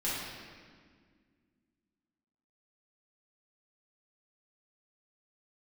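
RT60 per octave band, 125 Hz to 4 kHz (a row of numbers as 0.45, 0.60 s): 2.4, 2.9, 2.0, 1.7, 1.7, 1.4 s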